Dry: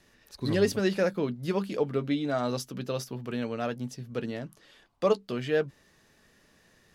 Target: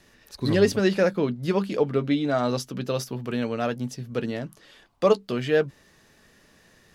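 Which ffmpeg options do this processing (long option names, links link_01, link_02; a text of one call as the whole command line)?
ffmpeg -i in.wav -filter_complex "[0:a]asettb=1/sr,asplit=3[link_01][link_02][link_03];[link_01]atrim=end=0.524[link_04];[link_02]atrim=start=0.52:end=2.87,asetpts=PTS-STARTPTS,afade=type=in:duration=0.004:curve=qsin,afade=type=out:start_time=2.346:duration=0.004:curve=qsin,highshelf=frequency=9800:gain=-7[link_05];[link_03]atrim=start=2.866[link_06];[link_04][link_05]acrossfade=duration=0.004:curve1=hsin:curve2=qsin[link_07];[link_07][link_06]acrossfade=duration=0.004:curve1=qsin:curve2=hsin,volume=5dB" out.wav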